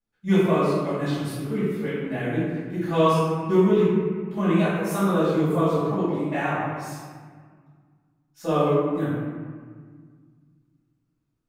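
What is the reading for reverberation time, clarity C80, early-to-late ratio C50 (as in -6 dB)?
1.7 s, -0.5 dB, -3.0 dB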